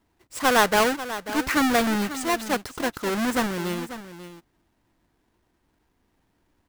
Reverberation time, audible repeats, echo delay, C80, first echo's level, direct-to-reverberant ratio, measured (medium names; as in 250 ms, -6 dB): no reverb, 1, 541 ms, no reverb, -13.0 dB, no reverb